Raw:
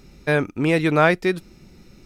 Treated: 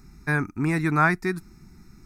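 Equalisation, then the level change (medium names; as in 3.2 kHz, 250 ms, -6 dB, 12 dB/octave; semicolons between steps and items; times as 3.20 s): static phaser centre 1.3 kHz, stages 4; 0.0 dB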